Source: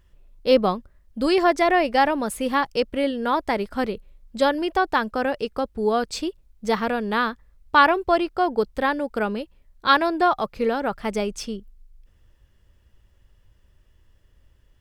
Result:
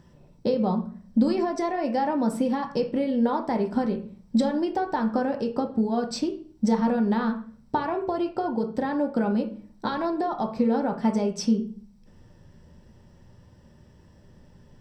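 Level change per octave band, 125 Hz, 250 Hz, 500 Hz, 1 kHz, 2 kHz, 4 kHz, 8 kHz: can't be measured, +2.5 dB, −4.5 dB, −7.0 dB, −13.5 dB, −10.5 dB, −3.5 dB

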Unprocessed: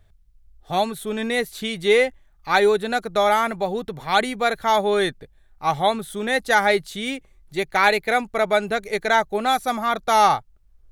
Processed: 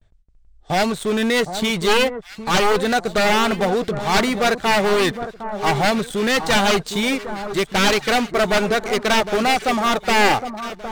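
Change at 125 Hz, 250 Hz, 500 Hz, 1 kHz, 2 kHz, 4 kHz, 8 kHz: +8.0, +7.5, +1.5, +0.5, +2.5, +6.0, +7.5 decibels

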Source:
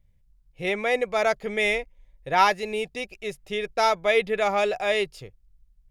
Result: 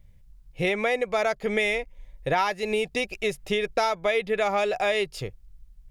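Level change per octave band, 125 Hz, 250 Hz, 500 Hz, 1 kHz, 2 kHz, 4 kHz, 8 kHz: +5.0, +2.5, −0.5, −3.5, −1.0, −1.0, −0.5 decibels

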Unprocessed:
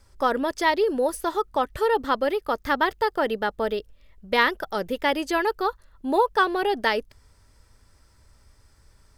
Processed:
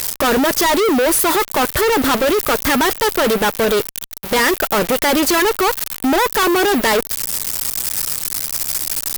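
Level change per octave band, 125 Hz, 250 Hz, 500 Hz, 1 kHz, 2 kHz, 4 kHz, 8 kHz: +15.0, +11.5, +7.5, +6.0, +8.0, +12.0, +25.0 decibels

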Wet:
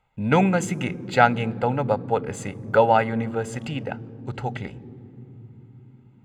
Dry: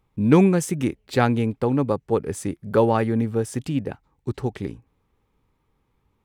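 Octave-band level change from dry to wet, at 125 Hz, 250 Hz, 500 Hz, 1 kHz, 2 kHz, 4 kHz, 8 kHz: −3.0, −5.0, −0.5, +5.5, +6.0, +2.5, −3.0 decibels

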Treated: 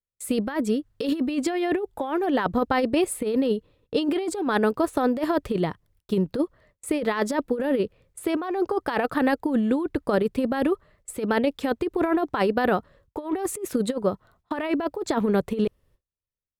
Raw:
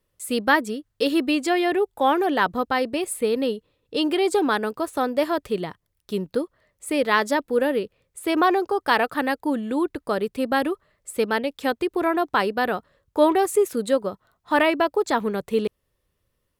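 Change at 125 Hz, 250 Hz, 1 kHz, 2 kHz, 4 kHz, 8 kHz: +6.0, +1.0, −5.5, −6.5, −6.5, −1.5 decibels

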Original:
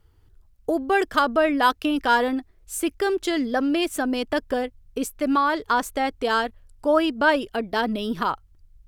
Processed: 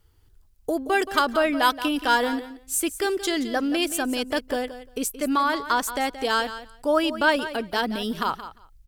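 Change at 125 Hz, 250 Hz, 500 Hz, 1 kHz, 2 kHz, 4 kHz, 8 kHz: can't be measured, −2.0 dB, −2.0 dB, −1.5 dB, −0.5 dB, +2.5 dB, +5.5 dB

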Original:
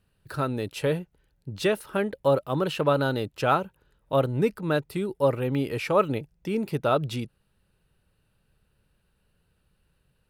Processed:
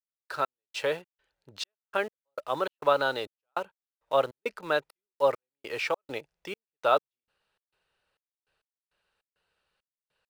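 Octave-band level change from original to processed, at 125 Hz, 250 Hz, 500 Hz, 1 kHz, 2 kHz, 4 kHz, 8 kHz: −21.5 dB, −16.0 dB, −4.0 dB, −1.5 dB, 0.0 dB, −1.0 dB, can't be measured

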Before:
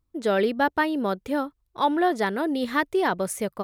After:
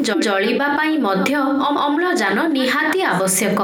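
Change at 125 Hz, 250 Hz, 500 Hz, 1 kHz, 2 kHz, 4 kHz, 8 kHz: can't be measured, +8.5 dB, +5.5 dB, +6.5 dB, +10.0 dB, +12.0 dB, +15.5 dB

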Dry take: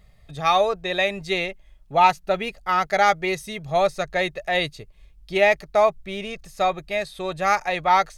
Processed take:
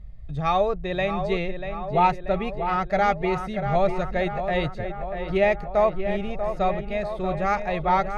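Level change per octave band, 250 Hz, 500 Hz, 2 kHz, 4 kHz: +4.0, −1.0, −6.0, −9.5 decibels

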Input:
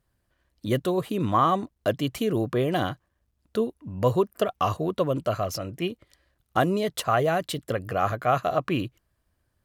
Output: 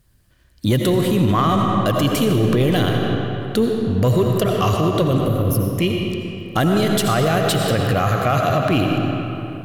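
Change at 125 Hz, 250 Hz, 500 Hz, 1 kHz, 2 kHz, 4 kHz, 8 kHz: +12.5, +10.5, +6.5, +4.5, +8.0, +11.0, +11.0 decibels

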